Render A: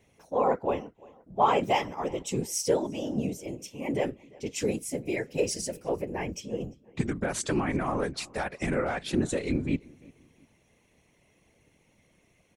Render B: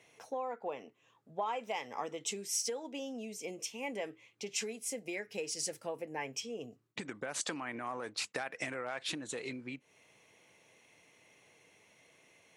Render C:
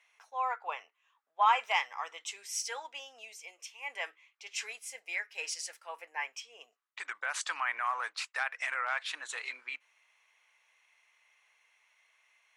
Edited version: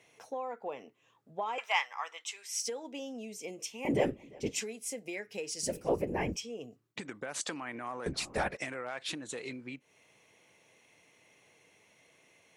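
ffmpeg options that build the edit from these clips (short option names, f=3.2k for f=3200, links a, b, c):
-filter_complex "[0:a]asplit=3[a][b][c];[1:a]asplit=5[d][e][f][g][h];[d]atrim=end=1.582[i];[2:a]atrim=start=1.578:end=2.602[j];[e]atrim=start=2.598:end=3.852[k];[a]atrim=start=3.848:end=4.602[l];[f]atrim=start=4.598:end=5.632[m];[b]atrim=start=5.628:end=6.362[n];[g]atrim=start=6.358:end=8.062[o];[c]atrim=start=8.058:end=8.572[p];[h]atrim=start=8.568[q];[i][j]acrossfade=d=0.004:c1=hsin:c2=hsin[r];[r][k]acrossfade=d=0.004:c1=hsin:c2=hsin[s];[s][l]acrossfade=d=0.004:c1=hsin:c2=hsin[t];[t][m]acrossfade=d=0.004:c1=hsin:c2=hsin[u];[u][n]acrossfade=d=0.004:c1=hsin:c2=hsin[v];[v][o]acrossfade=d=0.004:c1=hsin:c2=hsin[w];[w][p]acrossfade=d=0.004:c1=hsin:c2=hsin[x];[x][q]acrossfade=d=0.004:c1=hsin:c2=hsin"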